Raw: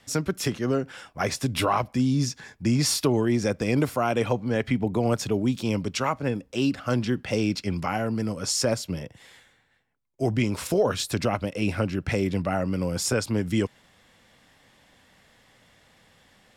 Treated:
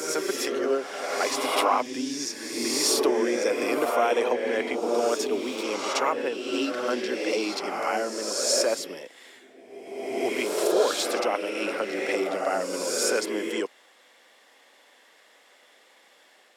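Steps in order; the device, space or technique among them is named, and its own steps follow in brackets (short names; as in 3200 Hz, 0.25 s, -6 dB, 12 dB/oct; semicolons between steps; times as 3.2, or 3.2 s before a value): ghost voice (reverse; reverb RT60 1.6 s, pre-delay 40 ms, DRR 0.5 dB; reverse; HPF 350 Hz 24 dB/oct)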